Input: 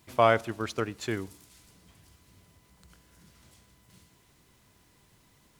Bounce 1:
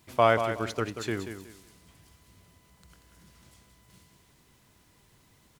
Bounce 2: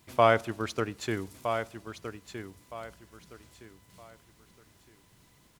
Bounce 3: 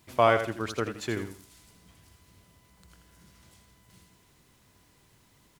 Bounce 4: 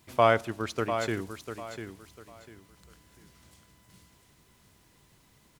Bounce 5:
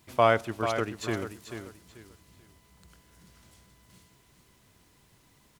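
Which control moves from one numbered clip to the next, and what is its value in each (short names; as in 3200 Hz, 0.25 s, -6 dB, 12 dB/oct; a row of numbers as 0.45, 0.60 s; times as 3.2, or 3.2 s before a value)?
feedback echo, time: 185, 1265, 82, 697, 438 ms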